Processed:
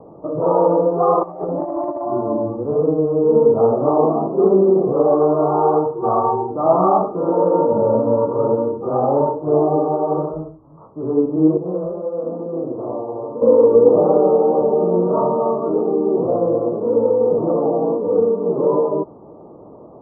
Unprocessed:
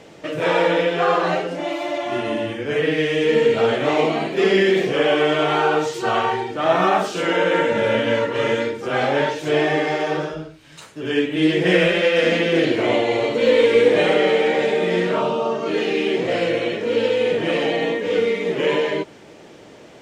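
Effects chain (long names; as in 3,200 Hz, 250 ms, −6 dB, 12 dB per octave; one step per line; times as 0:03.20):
Butterworth low-pass 1,200 Hz 96 dB per octave
0:01.23–0:02.02: compressor whose output falls as the input rises −27 dBFS, ratio −0.5
0:11.57–0:13.42: tuned comb filter 130 Hz, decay 1.6 s, mix 70%
level +3.5 dB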